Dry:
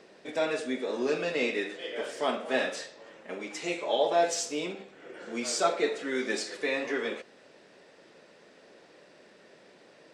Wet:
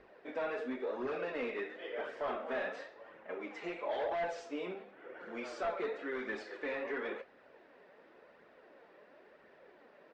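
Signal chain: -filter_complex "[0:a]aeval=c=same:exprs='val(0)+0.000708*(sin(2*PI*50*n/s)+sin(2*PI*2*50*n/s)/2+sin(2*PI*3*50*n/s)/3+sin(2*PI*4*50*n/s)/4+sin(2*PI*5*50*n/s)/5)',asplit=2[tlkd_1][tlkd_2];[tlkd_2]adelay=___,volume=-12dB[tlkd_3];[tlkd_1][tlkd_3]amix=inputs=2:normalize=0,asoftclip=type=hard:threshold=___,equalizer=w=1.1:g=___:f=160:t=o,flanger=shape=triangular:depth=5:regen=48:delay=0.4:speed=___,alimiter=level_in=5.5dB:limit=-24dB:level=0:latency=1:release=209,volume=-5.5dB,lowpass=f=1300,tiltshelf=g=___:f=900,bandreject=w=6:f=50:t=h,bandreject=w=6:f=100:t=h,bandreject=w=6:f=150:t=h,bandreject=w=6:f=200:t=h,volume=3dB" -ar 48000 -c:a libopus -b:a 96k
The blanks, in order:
28, -26dB, -2.5, 0.95, -5.5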